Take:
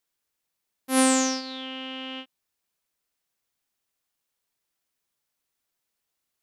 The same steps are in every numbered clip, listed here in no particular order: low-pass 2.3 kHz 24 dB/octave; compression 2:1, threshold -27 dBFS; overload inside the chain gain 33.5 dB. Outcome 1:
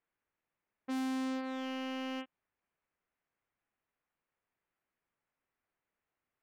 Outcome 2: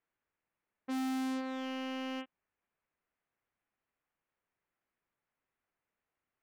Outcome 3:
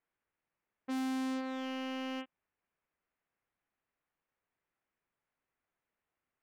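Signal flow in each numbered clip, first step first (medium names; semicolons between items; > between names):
compression > low-pass > overload inside the chain; low-pass > overload inside the chain > compression; low-pass > compression > overload inside the chain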